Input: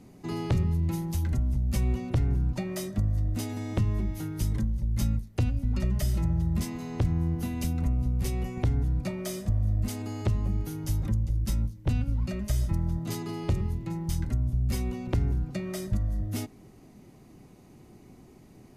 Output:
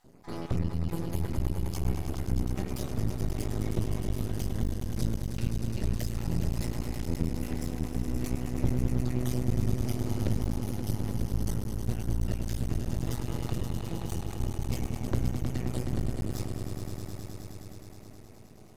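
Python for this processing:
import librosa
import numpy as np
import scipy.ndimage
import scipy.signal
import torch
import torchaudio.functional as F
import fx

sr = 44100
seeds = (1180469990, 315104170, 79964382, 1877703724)

y = fx.spec_dropout(x, sr, seeds[0], share_pct=31)
y = fx.echo_swell(y, sr, ms=105, loudest=5, wet_db=-8.5)
y = np.maximum(y, 0.0)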